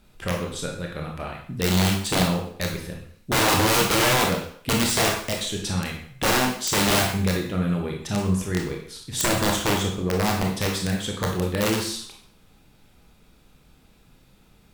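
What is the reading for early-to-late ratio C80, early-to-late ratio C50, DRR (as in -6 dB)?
8.5 dB, 4.5 dB, 0.0 dB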